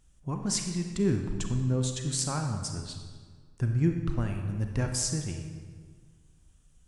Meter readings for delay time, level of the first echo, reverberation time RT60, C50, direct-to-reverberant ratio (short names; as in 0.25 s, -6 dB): none, none, 1.7 s, 5.0 dB, 4.0 dB